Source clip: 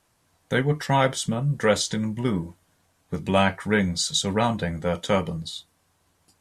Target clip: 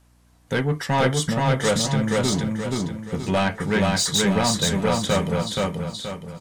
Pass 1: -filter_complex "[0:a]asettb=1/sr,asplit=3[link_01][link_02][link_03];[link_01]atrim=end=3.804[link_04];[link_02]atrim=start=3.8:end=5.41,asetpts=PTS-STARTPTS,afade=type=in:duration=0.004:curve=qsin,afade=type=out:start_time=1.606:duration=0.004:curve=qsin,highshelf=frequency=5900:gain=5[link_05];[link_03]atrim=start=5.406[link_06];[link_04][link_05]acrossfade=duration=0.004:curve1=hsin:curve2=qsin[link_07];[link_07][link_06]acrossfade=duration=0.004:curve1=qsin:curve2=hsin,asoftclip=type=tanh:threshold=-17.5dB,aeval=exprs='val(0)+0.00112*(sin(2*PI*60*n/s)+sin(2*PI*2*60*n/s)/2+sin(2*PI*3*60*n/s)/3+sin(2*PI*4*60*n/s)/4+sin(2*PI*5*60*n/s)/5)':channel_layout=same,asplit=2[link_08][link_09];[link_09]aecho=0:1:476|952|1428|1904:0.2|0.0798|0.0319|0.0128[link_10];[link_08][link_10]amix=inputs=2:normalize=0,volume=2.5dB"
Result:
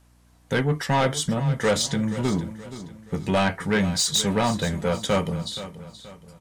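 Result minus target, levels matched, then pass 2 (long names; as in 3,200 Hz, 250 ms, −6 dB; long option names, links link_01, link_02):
echo-to-direct −12 dB
-filter_complex "[0:a]asettb=1/sr,asplit=3[link_01][link_02][link_03];[link_01]atrim=end=3.804[link_04];[link_02]atrim=start=3.8:end=5.41,asetpts=PTS-STARTPTS,afade=type=in:duration=0.004:curve=qsin,afade=type=out:start_time=1.606:duration=0.004:curve=qsin,highshelf=frequency=5900:gain=5[link_05];[link_03]atrim=start=5.406[link_06];[link_04][link_05]acrossfade=duration=0.004:curve1=hsin:curve2=qsin[link_07];[link_07][link_06]acrossfade=duration=0.004:curve1=qsin:curve2=hsin,asoftclip=type=tanh:threshold=-17.5dB,aeval=exprs='val(0)+0.00112*(sin(2*PI*60*n/s)+sin(2*PI*2*60*n/s)/2+sin(2*PI*3*60*n/s)/3+sin(2*PI*4*60*n/s)/4+sin(2*PI*5*60*n/s)/5)':channel_layout=same,asplit=2[link_08][link_09];[link_09]aecho=0:1:476|952|1428|1904|2380:0.794|0.318|0.127|0.0508|0.0203[link_10];[link_08][link_10]amix=inputs=2:normalize=0,volume=2.5dB"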